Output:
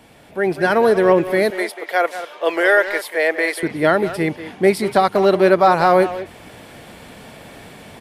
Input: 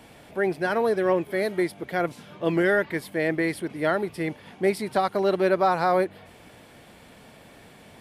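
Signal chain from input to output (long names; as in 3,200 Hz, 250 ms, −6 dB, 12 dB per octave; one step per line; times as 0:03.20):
0:01.50–0:03.63: high-pass filter 470 Hz 24 dB per octave
automatic gain control gain up to 9 dB
far-end echo of a speakerphone 190 ms, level −11 dB
level +1 dB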